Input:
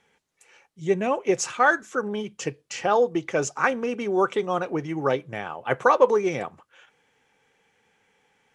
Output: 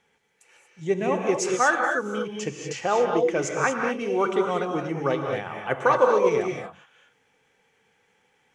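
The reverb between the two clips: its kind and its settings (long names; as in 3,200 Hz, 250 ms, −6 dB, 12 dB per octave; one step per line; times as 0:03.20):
reverb whose tail is shaped and stops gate 260 ms rising, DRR 2 dB
level −2 dB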